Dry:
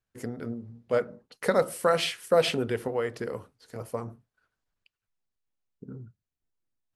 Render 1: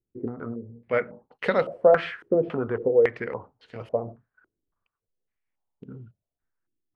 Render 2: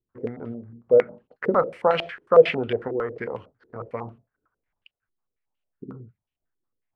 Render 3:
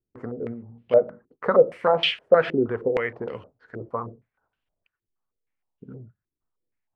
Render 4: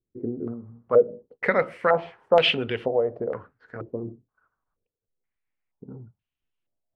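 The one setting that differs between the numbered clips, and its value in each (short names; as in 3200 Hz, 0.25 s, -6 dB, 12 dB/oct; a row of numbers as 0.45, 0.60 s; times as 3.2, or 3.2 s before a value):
stepped low-pass, rate: 3.6, 11, 6.4, 2.1 Hz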